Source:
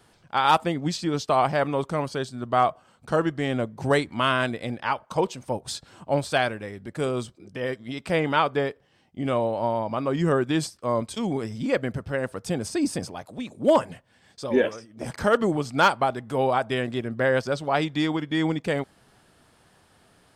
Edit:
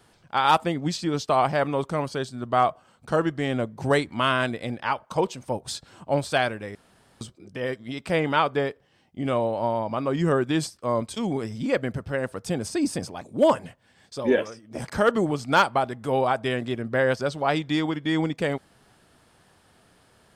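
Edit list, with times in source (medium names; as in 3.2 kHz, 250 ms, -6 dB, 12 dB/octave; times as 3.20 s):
6.75–7.21 s: room tone
13.21–13.47 s: delete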